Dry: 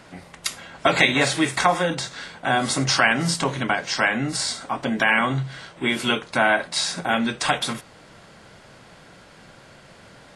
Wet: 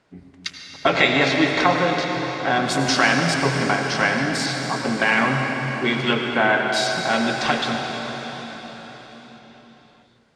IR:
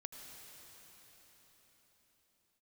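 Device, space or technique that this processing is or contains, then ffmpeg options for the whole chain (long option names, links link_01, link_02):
cathedral: -filter_complex "[0:a]afwtdn=0.0251[link_01];[1:a]atrim=start_sample=2205[link_02];[link_01][link_02]afir=irnorm=-1:irlink=0,lowpass=7600,equalizer=frequency=410:width_type=o:width=0.54:gain=4,volume=5.5dB"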